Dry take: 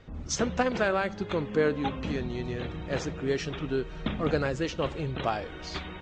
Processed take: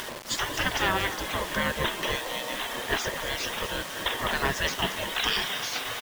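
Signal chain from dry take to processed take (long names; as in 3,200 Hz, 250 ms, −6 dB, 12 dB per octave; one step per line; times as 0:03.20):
upward compression, threshold −31 dBFS
in parallel at 0 dB: brickwall limiter −21 dBFS, peak gain reduction 8 dB
on the sum: EQ curve with evenly spaced ripples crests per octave 1.2, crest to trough 11 dB
gate on every frequency bin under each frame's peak −15 dB weak
0:05.09–0:05.58: high-shelf EQ 2,700 Hz +11.5 dB
on a send: echo with shifted repeats 232 ms, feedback 62%, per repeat +130 Hz, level −13 dB
on the sum: bit reduction 7 bits
level +5 dB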